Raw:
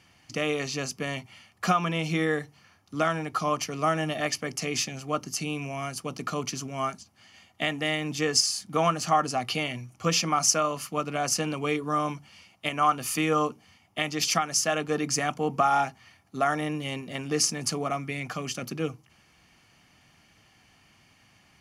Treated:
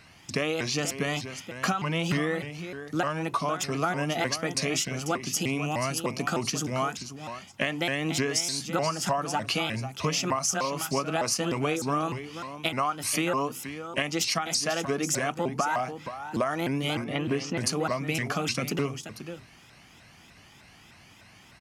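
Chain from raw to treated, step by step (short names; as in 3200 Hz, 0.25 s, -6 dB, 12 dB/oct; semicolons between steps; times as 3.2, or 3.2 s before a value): 17.04–17.58 Bessel low-pass 2700 Hz, order 4; compressor 10:1, threshold -30 dBFS, peak gain reduction 14 dB; echo 0.486 s -10.5 dB; shaped vibrato saw up 3.3 Hz, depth 250 cents; gain +6 dB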